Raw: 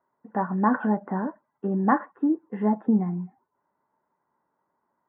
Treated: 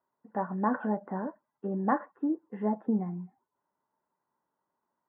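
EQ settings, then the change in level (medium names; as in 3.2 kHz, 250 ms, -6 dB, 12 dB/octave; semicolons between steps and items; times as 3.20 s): dynamic bell 550 Hz, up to +6 dB, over -38 dBFS, Q 1.8; -7.5 dB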